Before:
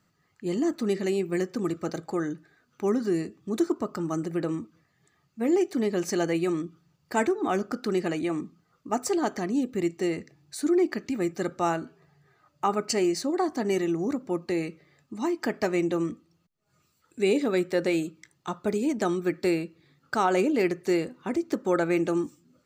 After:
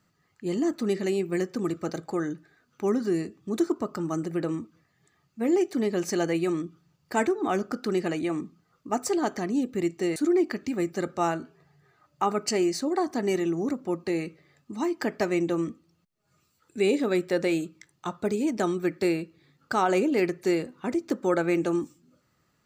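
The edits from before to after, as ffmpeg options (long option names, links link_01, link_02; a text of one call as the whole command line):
ffmpeg -i in.wav -filter_complex "[0:a]asplit=2[link_01][link_02];[link_01]atrim=end=10.162[link_03];[link_02]atrim=start=10.578[link_04];[link_03][link_04]acrossfade=duration=0.004:curve1=hsin:curve2=hsin" out.wav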